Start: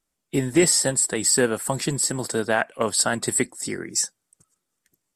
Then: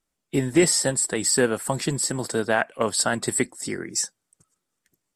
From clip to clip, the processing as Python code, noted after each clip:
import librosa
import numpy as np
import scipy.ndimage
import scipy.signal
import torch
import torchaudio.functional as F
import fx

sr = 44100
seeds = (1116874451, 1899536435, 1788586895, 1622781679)

y = fx.high_shelf(x, sr, hz=7400.0, db=-4.5)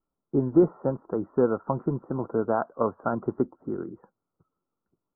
y = scipy.signal.sosfilt(scipy.signal.cheby1(6, 3, 1400.0, 'lowpass', fs=sr, output='sos'), x)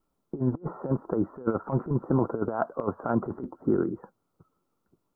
y = fx.over_compress(x, sr, threshold_db=-29.0, ratio=-0.5)
y = F.gain(torch.from_numpy(y), 3.0).numpy()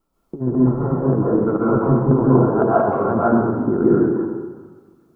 y = fx.rev_plate(x, sr, seeds[0], rt60_s=1.4, hf_ratio=0.6, predelay_ms=115, drr_db=-7.5)
y = F.gain(torch.from_numpy(y), 3.5).numpy()